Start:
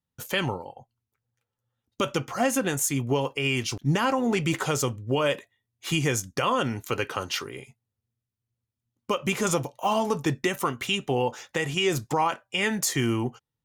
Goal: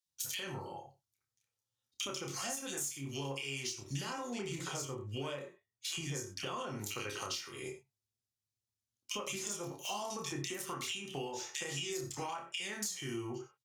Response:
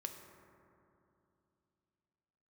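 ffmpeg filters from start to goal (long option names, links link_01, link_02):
-filter_complex "[0:a]equalizer=frequency=5400:width=0.59:gain=10,acrossover=split=2100[link_01][link_02];[link_01]adelay=60[link_03];[link_03][link_02]amix=inputs=2:normalize=0,agate=range=-10dB:threshold=-40dB:ratio=16:detection=peak,asetnsamples=nb_out_samples=441:pad=0,asendcmd='4.3 highshelf g -2;6.79 highshelf g 6.5',highshelf=frequency=2300:gain=9[link_04];[1:a]atrim=start_sample=2205,afade=type=out:start_time=0.15:duration=0.01,atrim=end_sample=7056[link_05];[link_04][link_05]afir=irnorm=-1:irlink=0,aeval=exprs='0.891*(cos(1*acos(clip(val(0)/0.891,-1,1)))-cos(1*PI/2))+0.126*(cos(5*acos(clip(val(0)/0.891,-1,1)))-cos(5*PI/2))':channel_layout=same,acompressor=threshold=-33dB:ratio=16,asplit=2[link_06][link_07];[link_07]adelay=29,volume=-4.5dB[link_08];[link_06][link_08]amix=inputs=2:normalize=0,volume=-5dB"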